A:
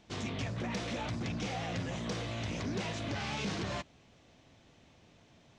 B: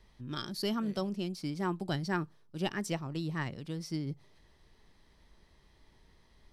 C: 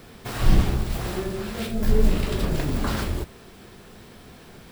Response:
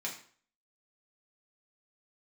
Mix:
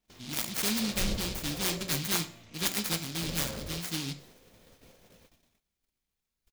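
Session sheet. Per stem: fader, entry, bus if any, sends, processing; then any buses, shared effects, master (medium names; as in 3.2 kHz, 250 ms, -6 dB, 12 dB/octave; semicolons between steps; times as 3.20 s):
-2.5 dB, 0.00 s, send -6 dB, echo send -7 dB, treble shelf 5.2 kHz +8 dB; peak limiter -37.5 dBFS, peak gain reduction 14 dB; compression 2.5:1, threshold -57 dBFS, peak gain reduction 10 dB
+2.0 dB, 0.00 s, send -5.5 dB, no echo send, tilt shelf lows -4.5 dB, about 1.1 kHz; delay time shaken by noise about 3.7 kHz, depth 0.43 ms
-17.0 dB, 0.55 s, muted 2.00–3.22 s, no send, no echo send, peaking EQ 530 Hz +14 dB 0.45 oct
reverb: on, RT60 0.50 s, pre-delay 3 ms
echo: feedback delay 158 ms, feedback 42%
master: gate -55 dBFS, range -25 dB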